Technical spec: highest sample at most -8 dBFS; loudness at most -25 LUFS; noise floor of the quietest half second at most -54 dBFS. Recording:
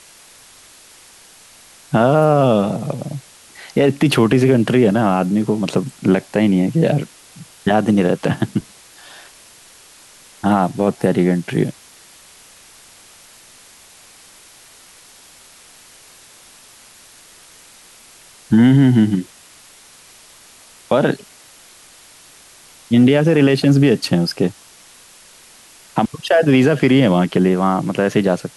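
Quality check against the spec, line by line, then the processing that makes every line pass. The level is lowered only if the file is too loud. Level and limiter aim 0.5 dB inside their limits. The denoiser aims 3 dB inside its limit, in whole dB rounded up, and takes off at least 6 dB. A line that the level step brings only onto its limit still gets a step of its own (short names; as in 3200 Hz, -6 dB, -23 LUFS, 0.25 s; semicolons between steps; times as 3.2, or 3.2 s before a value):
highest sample -4.0 dBFS: fail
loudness -16.0 LUFS: fail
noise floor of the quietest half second -45 dBFS: fail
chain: gain -9.5 dB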